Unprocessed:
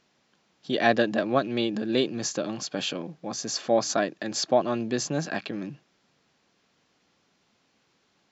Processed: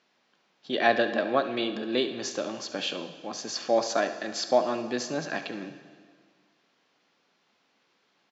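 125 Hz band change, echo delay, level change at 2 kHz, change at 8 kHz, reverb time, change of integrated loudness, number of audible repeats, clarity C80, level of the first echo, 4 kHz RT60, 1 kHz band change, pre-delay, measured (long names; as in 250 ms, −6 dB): −9.5 dB, 70 ms, +0.5 dB, can't be measured, 1.8 s, −1.5 dB, 1, 12.0 dB, −14.0 dB, 1.7 s, 0.0 dB, 5 ms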